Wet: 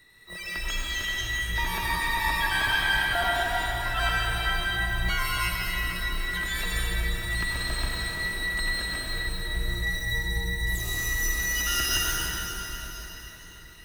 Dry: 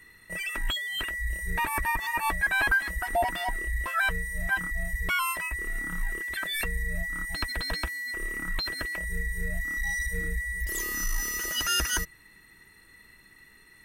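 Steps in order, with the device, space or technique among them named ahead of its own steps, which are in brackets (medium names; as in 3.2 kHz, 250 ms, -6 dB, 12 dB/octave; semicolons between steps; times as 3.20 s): shimmer-style reverb (harmony voices +12 st -6 dB; reverberation RT60 4.5 s, pre-delay 78 ms, DRR -5.5 dB); trim -5.5 dB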